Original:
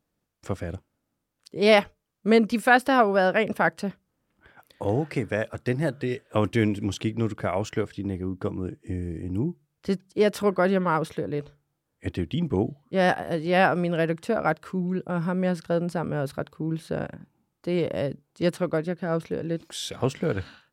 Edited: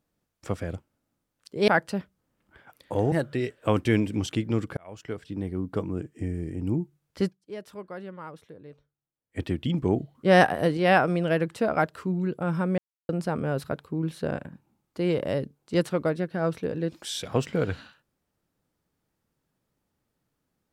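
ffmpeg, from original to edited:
ffmpeg -i in.wav -filter_complex "[0:a]asplit=10[link_01][link_02][link_03][link_04][link_05][link_06][link_07][link_08][link_09][link_10];[link_01]atrim=end=1.682[link_11];[link_02]atrim=start=3.578:end=5.022[link_12];[link_03]atrim=start=5.798:end=7.45,asetpts=PTS-STARTPTS,afade=type=out:start_time=1.648:duration=0.004:curve=hsin[link_13];[link_04]atrim=start=7.45:end=10.08,asetpts=PTS-STARTPTS,afade=type=in:duration=0.81,afade=type=out:start_time=2.49:duration=0.14:curve=qua:silence=0.141254[link_14];[link_05]atrim=start=10.08:end=11.94,asetpts=PTS-STARTPTS,volume=-17dB[link_15];[link_06]atrim=start=11.94:end=12.832,asetpts=PTS-STARTPTS,afade=type=in:duration=0.14:curve=qua:silence=0.141254[link_16];[link_07]atrim=start=12.828:end=13.452,asetpts=PTS-STARTPTS,volume=4dB[link_17];[link_08]atrim=start=13.448:end=15.46,asetpts=PTS-STARTPTS,afade=type=out:start_time=2.008:duration=0.004:curve=hsin[link_18];[link_09]atrim=start=15.46:end=15.77,asetpts=PTS-STARTPTS,volume=0[link_19];[link_10]atrim=start=15.77,asetpts=PTS-STARTPTS,afade=type=in:duration=0.004:curve=hsin[link_20];[link_11][link_12]acrossfade=duration=0.004:curve1=hsin:curve2=hsin[link_21];[link_13][link_14][link_15][link_16]concat=n=4:v=0:a=1[link_22];[link_21][link_22]acrossfade=duration=0.004:curve1=hsin:curve2=hsin[link_23];[link_23][link_17]acrossfade=duration=0.004:curve1=hsin:curve2=hsin[link_24];[link_18][link_19][link_20]concat=n=3:v=0:a=1[link_25];[link_24][link_25]acrossfade=duration=0.004:curve1=hsin:curve2=hsin" out.wav

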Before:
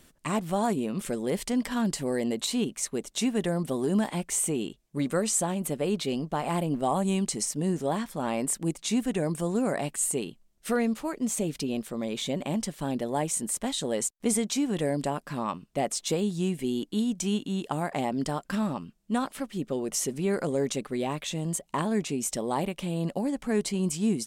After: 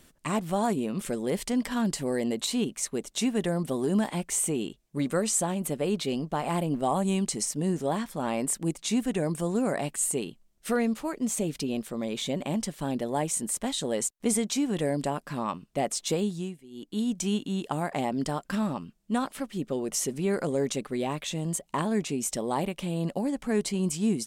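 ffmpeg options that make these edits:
ffmpeg -i in.wav -filter_complex "[0:a]asplit=3[link_01][link_02][link_03];[link_01]atrim=end=16.61,asetpts=PTS-STARTPTS,afade=type=out:start_time=16.23:duration=0.38:silence=0.0944061[link_04];[link_02]atrim=start=16.61:end=16.7,asetpts=PTS-STARTPTS,volume=-20.5dB[link_05];[link_03]atrim=start=16.7,asetpts=PTS-STARTPTS,afade=type=in:duration=0.38:silence=0.0944061[link_06];[link_04][link_05][link_06]concat=n=3:v=0:a=1" out.wav

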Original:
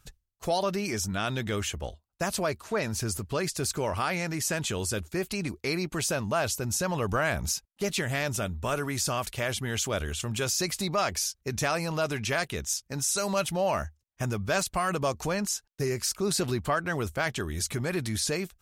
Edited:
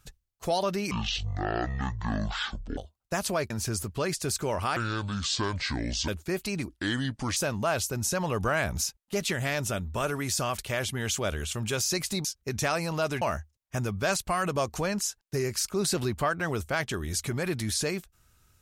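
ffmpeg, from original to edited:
ffmpeg -i in.wav -filter_complex "[0:a]asplit=10[link_01][link_02][link_03][link_04][link_05][link_06][link_07][link_08][link_09][link_10];[link_01]atrim=end=0.914[link_11];[link_02]atrim=start=0.91:end=1.86,asetpts=PTS-STARTPTS,asetrate=22491,aresample=44100,atrim=end_sample=82147,asetpts=PTS-STARTPTS[link_12];[link_03]atrim=start=1.856:end=2.592[link_13];[link_04]atrim=start=2.848:end=4.114[link_14];[link_05]atrim=start=4.11:end=4.94,asetpts=PTS-STARTPTS,asetrate=27783,aresample=44100[link_15];[link_06]atrim=start=4.936:end=5.554[link_16];[link_07]atrim=start=5.55:end=6.05,asetpts=PTS-STARTPTS,asetrate=32634,aresample=44100,atrim=end_sample=29797,asetpts=PTS-STARTPTS[link_17];[link_08]atrim=start=6.046:end=10.932[link_18];[link_09]atrim=start=11.238:end=12.212[link_19];[link_10]atrim=start=13.678[link_20];[link_11][link_12]acrossfade=duration=0.004:curve1=hsin:curve2=hsin[link_21];[link_21][link_13]acrossfade=duration=0.004:curve1=hsin:curve2=hsin[link_22];[link_22][link_14]acrossfade=duration=0.004:curve1=hsin:curve2=hsin[link_23];[link_23][link_15]acrossfade=duration=0.004:curve1=hsin:curve2=hsin[link_24];[link_24][link_16]acrossfade=duration=0.004:curve1=hsin:curve2=hsin[link_25];[link_25][link_17]acrossfade=duration=0.004:curve1=hsin:curve2=hsin[link_26];[link_26][link_18]acrossfade=duration=0.004:curve1=hsin:curve2=hsin[link_27];[link_27][link_19]acrossfade=duration=0.004:curve1=hsin:curve2=hsin[link_28];[link_28][link_20]acrossfade=duration=0.004:curve1=hsin:curve2=hsin" out.wav

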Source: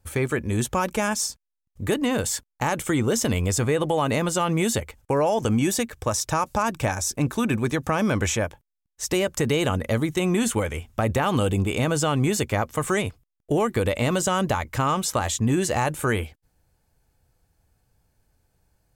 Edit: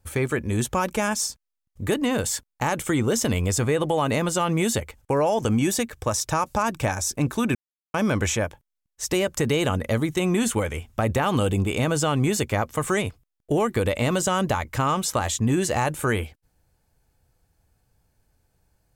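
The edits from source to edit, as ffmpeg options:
ffmpeg -i in.wav -filter_complex "[0:a]asplit=3[link_01][link_02][link_03];[link_01]atrim=end=7.55,asetpts=PTS-STARTPTS,afade=type=out:start_time=7.546:duration=0.004:curve=hsin[link_04];[link_02]atrim=start=7.55:end=7.94,asetpts=PTS-STARTPTS,volume=0[link_05];[link_03]atrim=start=7.94,asetpts=PTS-STARTPTS,afade=type=in:duration=0.004:curve=hsin[link_06];[link_04][link_05][link_06]concat=n=3:v=0:a=1" out.wav

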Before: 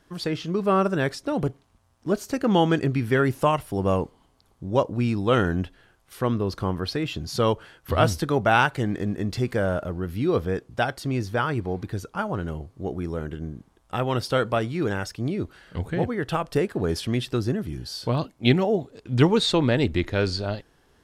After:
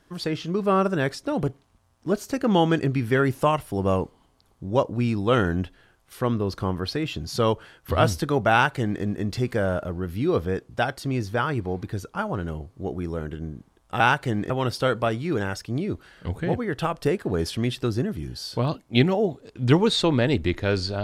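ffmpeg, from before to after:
ffmpeg -i in.wav -filter_complex "[0:a]asplit=3[link_01][link_02][link_03];[link_01]atrim=end=14.002[link_04];[link_02]atrim=start=8.518:end=9.022[link_05];[link_03]atrim=start=13.998[link_06];[link_04][link_05]acrossfade=duration=0.004:curve1=hsin:curve2=hsin[link_07];[link_07][link_06]acrossfade=duration=0.004:curve1=hsin:curve2=hsin" out.wav

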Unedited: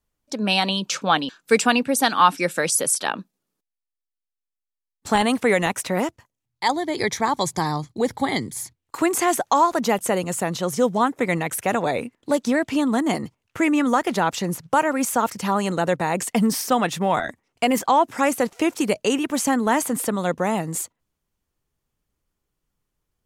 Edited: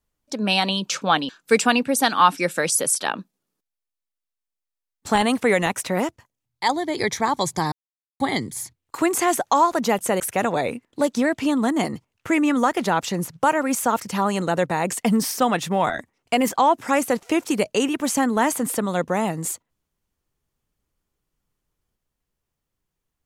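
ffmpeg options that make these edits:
ffmpeg -i in.wav -filter_complex "[0:a]asplit=4[link_01][link_02][link_03][link_04];[link_01]atrim=end=7.72,asetpts=PTS-STARTPTS,afade=type=out:start_time=7.716:duration=0.004:curve=hsin[link_05];[link_02]atrim=start=7.72:end=8.2,asetpts=PTS-STARTPTS,volume=0[link_06];[link_03]atrim=start=8.2:end=10.202,asetpts=PTS-STARTPTS,afade=type=in:duration=0.004:curve=hsin[link_07];[link_04]atrim=start=11.498[link_08];[link_05][link_06][link_07]concat=n=3:v=0:a=1[link_09];[link_09][link_08]acrossfade=duration=0.004:curve1=hsin:curve2=hsin" out.wav

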